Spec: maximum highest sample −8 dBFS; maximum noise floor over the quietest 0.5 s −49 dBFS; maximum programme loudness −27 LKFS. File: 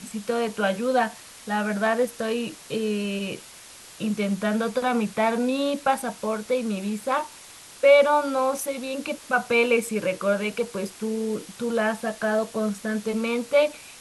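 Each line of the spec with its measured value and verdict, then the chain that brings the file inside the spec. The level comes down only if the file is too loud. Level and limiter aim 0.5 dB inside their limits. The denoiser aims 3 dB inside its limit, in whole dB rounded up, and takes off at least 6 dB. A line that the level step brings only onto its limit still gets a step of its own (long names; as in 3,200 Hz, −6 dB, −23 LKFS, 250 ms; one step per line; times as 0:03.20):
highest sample −6.5 dBFS: out of spec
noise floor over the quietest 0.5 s −46 dBFS: out of spec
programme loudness −25.0 LKFS: out of spec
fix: broadband denoise 6 dB, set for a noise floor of −46 dBFS
level −2.5 dB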